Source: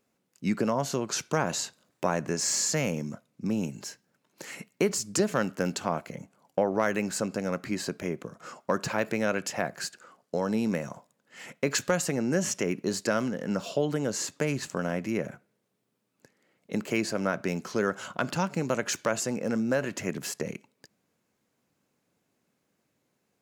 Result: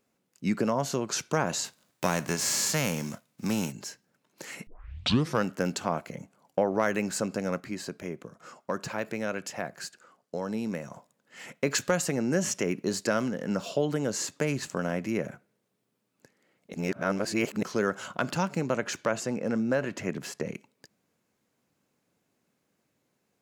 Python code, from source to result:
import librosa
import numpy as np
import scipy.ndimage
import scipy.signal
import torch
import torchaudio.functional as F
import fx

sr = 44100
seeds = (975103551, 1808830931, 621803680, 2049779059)

y = fx.envelope_flatten(x, sr, power=0.6, at=(1.64, 3.71), fade=0.02)
y = fx.high_shelf(y, sr, hz=5900.0, db=-10.0, at=(18.61, 20.54))
y = fx.edit(y, sr, fx.tape_start(start_s=4.67, length_s=0.77),
    fx.clip_gain(start_s=7.6, length_s=3.32, db=-4.5),
    fx.reverse_span(start_s=16.74, length_s=0.89), tone=tone)